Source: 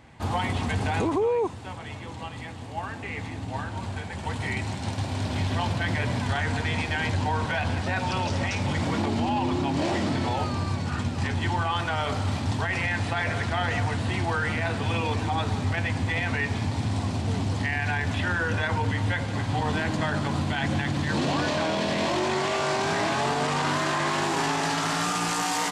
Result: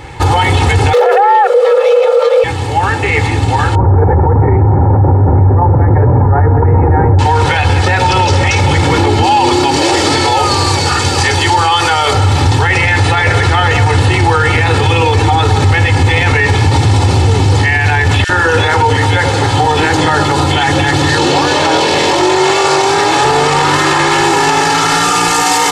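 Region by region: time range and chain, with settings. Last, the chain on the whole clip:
0.93–2.44 self-modulated delay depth 0.31 ms + tone controls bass +14 dB, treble -5 dB + frequency shift +390 Hz
3.75–7.19 Gaussian blur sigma 8.4 samples + fast leveller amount 100%
9.23–12.12 tone controls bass -9 dB, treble +7 dB + whine 4600 Hz -32 dBFS
18.24–23.25 low shelf 180 Hz -9 dB + bands offset in time highs, lows 50 ms, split 2200 Hz
whole clip: comb 2.3 ms, depth 82%; maximiser +21.5 dB; gain -1 dB

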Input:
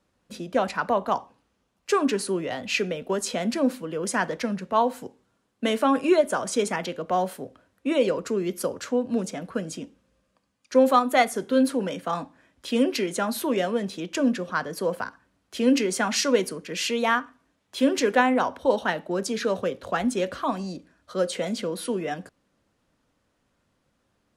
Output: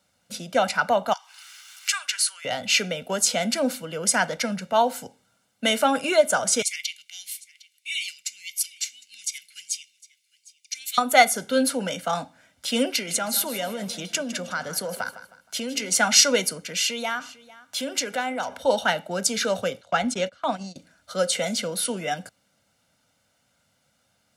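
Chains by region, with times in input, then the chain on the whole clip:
1.13–2.45 high shelf 12000 Hz -4 dB + upward compressor, threshold -24 dBFS + HPF 1400 Hz 24 dB/oct
6.62–10.98 elliptic high-pass 2200 Hz, stop band 50 dB + echo 0.757 s -21.5 dB
12.92–15.95 compressor, threshold -26 dBFS + feedback echo 0.157 s, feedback 34%, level -13.5 dB
16.64–18.62 compressor 2:1, threshold -32 dBFS + echo 0.449 s -20.5 dB
19.81–20.76 gate -32 dBFS, range -23 dB + air absorption 62 m + mismatched tape noise reduction encoder only
whole clip: HPF 93 Hz; high shelf 2200 Hz +11 dB; comb 1.4 ms, depth 63%; gain -1 dB

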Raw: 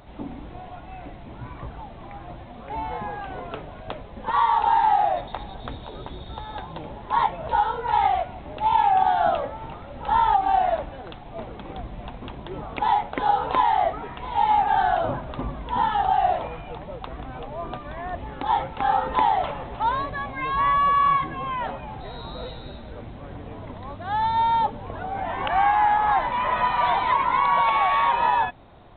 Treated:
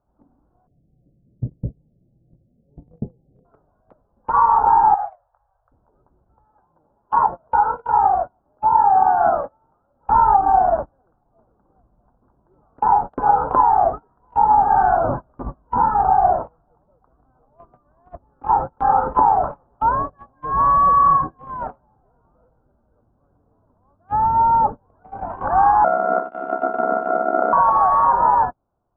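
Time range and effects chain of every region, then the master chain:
0.67–3.45 steep low-pass 560 Hz 48 dB/oct + bell 150 Hz +13 dB 1.1 oct
4.94–5.72 compressor 1.5:1, threshold -34 dBFS + elliptic band-stop 110–530 Hz + tilt shelf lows -6 dB, about 1100 Hz
6.48–10.03 Chebyshev low-pass 2000 Hz + low shelf 150 Hz -7 dB
25.84–27.53 sample sorter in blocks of 64 samples + ring modulator 33 Hz + brick-wall FIR high-pass 180 Hz
whole clip: steep low-pass 1500 Hz 72 dB/oct; gate -27 dBFS, range -30 dB; gain +5.5 dB

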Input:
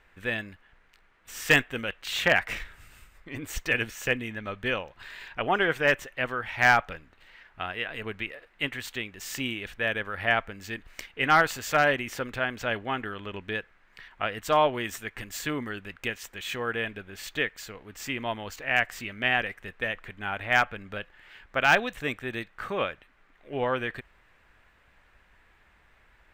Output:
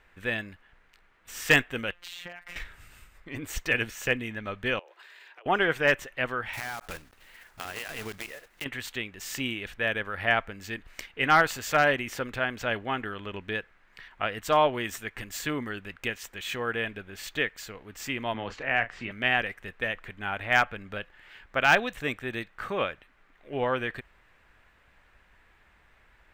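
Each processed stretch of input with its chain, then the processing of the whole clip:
1.92–2.56 compressor 20:1, threshold -36 dBFS + robotiser 175 Hz
4.79–5.46 steep high-pass 330 Hz 96 dB/oct + compressor 16:1, threshold -47 dBFS
6.53–8.66 block floating point 3-bit + compressor 20:1, threshold -31 dBFS
18.34–19.11 Bessel low-pass 2400 Hz + doubler 35 ms -11 dB + three-band squash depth 40%
whole clip: dry

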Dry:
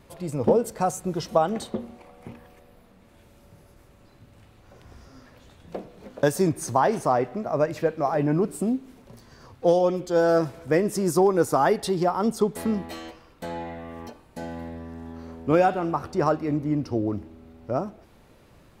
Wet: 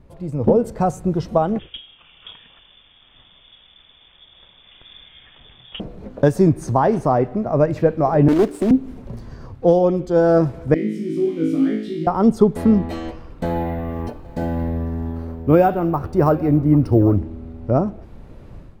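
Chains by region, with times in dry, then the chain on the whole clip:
1.59–5.8 bell 470 Hz -5 dB 1.6 oct + inverted band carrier 3500 Hz
8.28–8.71 HPF 260 Hz 24 dB/oct + companded quantiser 4-bit + Doppler distortion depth 0.3 ms
10.74–12.07 switching spikes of -20.5 dBFS + vowel filter i + flutter echo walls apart 3.2 m, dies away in 0.65 s
13.45–17.21 bell 220 Hz -6 dB 0.26 oct + echo 0.796 s -21.5 dB + careless resampling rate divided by 3×, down none, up hold
whole clip: AGC gain up to 11.5 dB; tilt -3 dB/oct; gain -4 dB

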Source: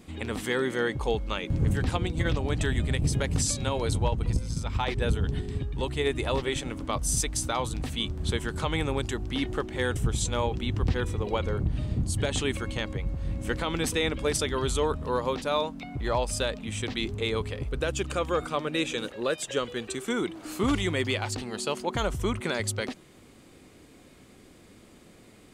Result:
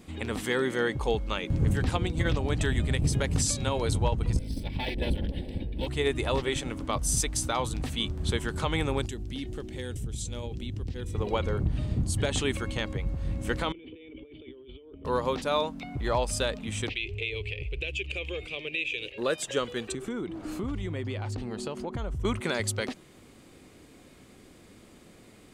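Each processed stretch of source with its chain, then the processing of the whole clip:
4.39–5.87 minimum comb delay 3.5 ms + fixed phaser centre 3000 Hz, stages 4
9.06–11.15 bell 1100 Hz -14 dB 1.8 oct + compressor 3:1, threshold -32 dBFS
13.72–15.05 vocal tract filter i + resonant low shelf 300 Hz -10 dB, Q 3 + negative-ratio compressor -47 dBFS
16.89–19.18 EQ curve 100 Hz 0 dB, 230 Hz -20 dB, 390 Hz -1 dB, 880 Hz -17 dB, 1400 Hz -22 dB, 2500 Hz +14 dB, 3700 Hz 0 dB, 6200 Hz -10 dB, 9700 Hz -14 dB + compressor 2.5:1, threshold -30 dBFS
19.92–22.25 tilt -2.5 dB/oct + compressor 4:1, threshold -31 dBFS
whole clip: dry

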